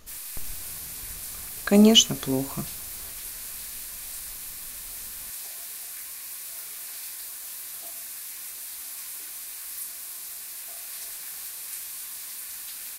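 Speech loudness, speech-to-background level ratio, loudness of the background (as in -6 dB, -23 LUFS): -19.5 LUFS, 15.0 dB, -34.5 LUFS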